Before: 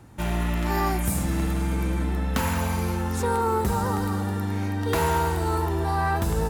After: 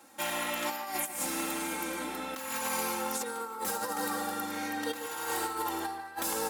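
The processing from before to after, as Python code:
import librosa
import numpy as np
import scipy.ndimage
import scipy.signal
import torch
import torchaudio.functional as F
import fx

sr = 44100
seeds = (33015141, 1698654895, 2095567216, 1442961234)

y = scipy.signal.sosfilt(scipy.signal.butter(2, 450.0, 'highpass', fs=sr, output='sos'), x)
y = fx.high_shelf(y, sr, hz=3800.0, db=8.0)
y = y + 1.0 * np.pad(y, (int(3.7 * sr / 1000.0), 0))[:len(y)]
y = fx.over_compress(y, sr, threshold_db=-27.0, ratio=-0.5)
y = fx.echo_wet_lowpass(y, sr, ms=145, feedback_pct=32, hz=3800.0, wet_db=-10)
y = y * 10.0 ** (-6.5 / 20.0)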